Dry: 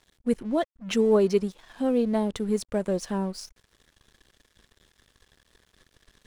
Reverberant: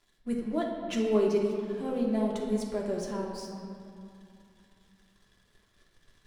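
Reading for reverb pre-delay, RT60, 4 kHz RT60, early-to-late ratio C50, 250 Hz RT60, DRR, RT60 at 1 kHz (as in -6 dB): 3 ms, 2.6 s, 1.5 s, 2.0 dB, 3.0 s, -3.0 dB, 2.8 s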